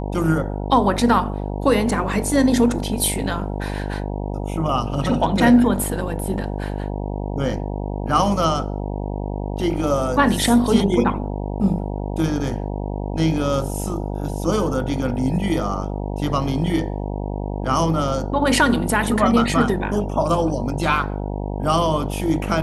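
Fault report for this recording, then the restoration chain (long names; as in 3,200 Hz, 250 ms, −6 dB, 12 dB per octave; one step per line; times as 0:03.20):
mains buzz 50 Hz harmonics 19 −26 dBFS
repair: hum removal 50 Hz, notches 19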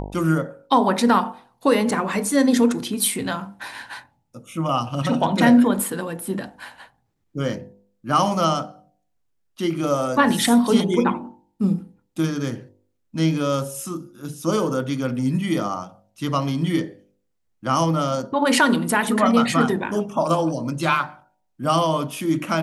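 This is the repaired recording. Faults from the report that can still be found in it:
none of them is left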